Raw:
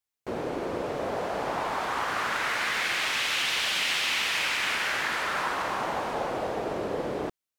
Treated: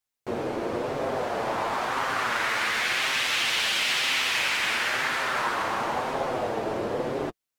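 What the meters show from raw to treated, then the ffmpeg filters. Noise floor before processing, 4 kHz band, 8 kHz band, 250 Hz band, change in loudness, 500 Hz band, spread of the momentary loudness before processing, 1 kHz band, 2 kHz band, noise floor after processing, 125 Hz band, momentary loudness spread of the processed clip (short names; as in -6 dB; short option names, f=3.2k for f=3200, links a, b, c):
under -85 dBFS, +2.0 dB, +2.0 dB, +2.0 dB, +2.0 dB, +2.0 dB, 7 LU, +2.0 dB, +2.0 dB, under -85 dBFS, +2.5 dB, 7 LU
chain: -af "flanger=delay=7.5:depth=1.6:regen=-24:speed=0.97:shape=sinusoidal,volume=5.5dB"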